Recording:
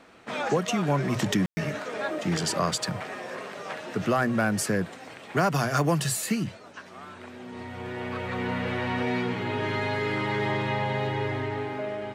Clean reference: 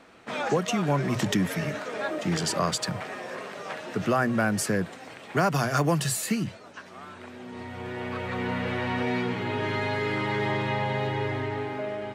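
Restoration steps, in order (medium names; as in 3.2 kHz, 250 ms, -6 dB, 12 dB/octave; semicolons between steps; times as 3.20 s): clip repair -14.5 dBFS; room tone fill 1.46–1.57 s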